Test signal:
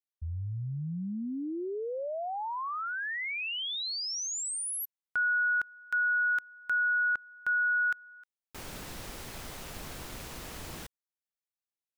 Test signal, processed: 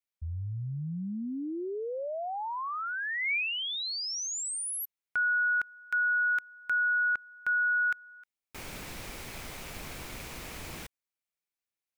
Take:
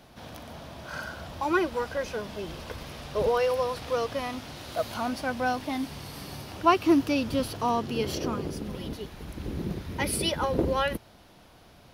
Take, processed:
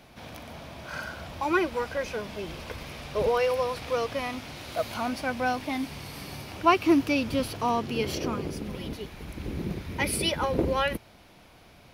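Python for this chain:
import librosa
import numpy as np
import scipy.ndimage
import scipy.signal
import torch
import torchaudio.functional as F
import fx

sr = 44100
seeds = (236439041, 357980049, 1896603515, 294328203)

y = fx.peak_eq(x, sr, hz=2300.0, db=6.5, octaves=0.36)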